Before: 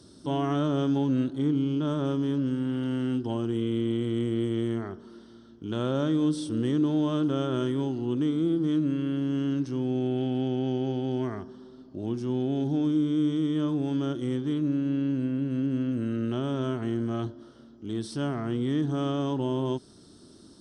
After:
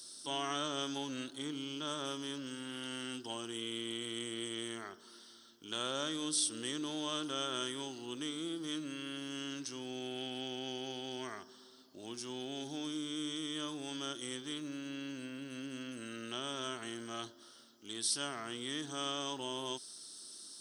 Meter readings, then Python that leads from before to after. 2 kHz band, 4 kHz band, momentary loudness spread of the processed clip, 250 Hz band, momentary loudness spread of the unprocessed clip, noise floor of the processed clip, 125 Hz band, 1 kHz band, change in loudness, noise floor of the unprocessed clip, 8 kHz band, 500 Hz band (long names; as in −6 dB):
0.0 dB, +5.0 dB, 11 LU, −16.5 dB, 7 LU, −59 dBFS, −23.0 dB, −5.5 dB, −11.5 dB, −52 dBFS, can't be measured, −12.5 dB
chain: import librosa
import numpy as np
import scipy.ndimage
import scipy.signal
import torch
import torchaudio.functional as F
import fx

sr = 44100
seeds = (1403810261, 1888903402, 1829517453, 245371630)

y = np.diff(x, prepend=0.0)
y = y * 10.0 ** (11.5 / 20.0)